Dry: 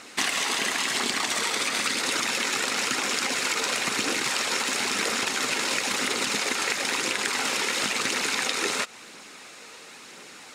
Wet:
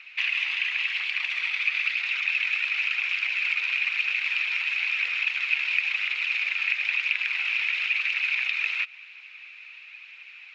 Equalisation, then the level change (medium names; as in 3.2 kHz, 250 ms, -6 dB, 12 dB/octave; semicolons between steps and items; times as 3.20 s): resonant high-pass 2.5 kHz, resonance Q 8.5; distance through air 160 m; tape spacing loss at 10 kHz 25 dB; 0.0 dB